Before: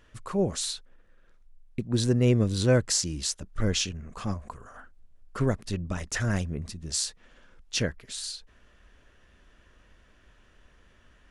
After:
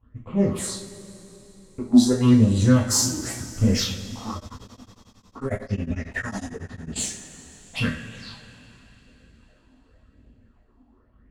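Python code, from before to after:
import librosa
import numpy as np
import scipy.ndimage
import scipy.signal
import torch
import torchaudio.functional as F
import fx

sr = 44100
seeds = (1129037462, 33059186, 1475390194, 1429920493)

y = np.where(x < 0.0, 10.0 ** (-12.0 / 20.0) * x, x)
y = fx.env_lowpass(y, sr, base_hz=760.0, full_db=-26.5)
y = fx.highpass(y, sr, hz=73.0, slope=6)
y = fx.high_shelf(y, sr, hz=9600.0, db=-4.0)
y = fx.small_body(y, sr, hz=(260.0, 1900.0, 3300.0), ring_ms=45, db=6)
y = fx.phaser_stages(y, sr, stages=6, low_hz=120.0, high_hz=1500.0, hz=0.9, feedback_pct=50)
y = fx.rev_double_slope(y, sr, seeds[0], early_s=0.41, late_s=3.9, knee_db=-19, drr_db=-4.0)
y = fx.tremolo_abs(y, sr, hz=11.0, at=(4.35, 6.95), fade=0.02)
y = y * 10.0 ** (3.5 / 20.0)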